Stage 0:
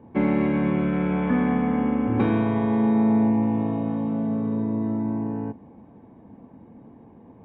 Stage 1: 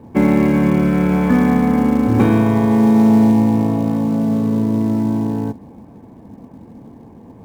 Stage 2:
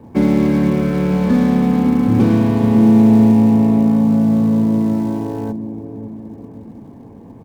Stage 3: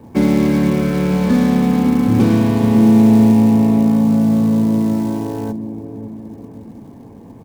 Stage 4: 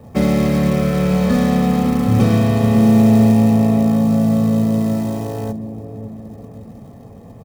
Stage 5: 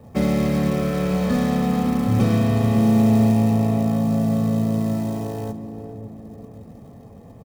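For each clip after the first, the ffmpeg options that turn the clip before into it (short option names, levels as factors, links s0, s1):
-filter_complex "[0:a]lowshelf=f=150:g=4.5,asplit=2[s0][s1];[s1]acrusher=bits=5:mode=log:mix=0:aa=0.000001,volume=0.562[s2];[s0][s2]amix=inputs=2:normalize=0,volume=1.41"
-filter_complex "[0:a]acrossover=split=590[s0][s1];[s0]aecho=1:1:554|1108|1662|2216|2770:0.473|0.213|0.0958|0.0431|0.0194[s2];[s1]volume=31.6,asoftclip=hard,volume=0.0316[s3];[s2][s3]amix=inputs=2:normalize=0"
-af "highshelf=f=3100:g=7.5"
-af "aecho=1:1:1.6:0.64"
-filter_complex "[0:a]asplit=2[s0][s1];[s1]adelay=419.8,volume=0.224,highshelf=f=4000:g=-9.45[s2];[s0][s2]amix=inputs=2:normalize=0,volume=0.596"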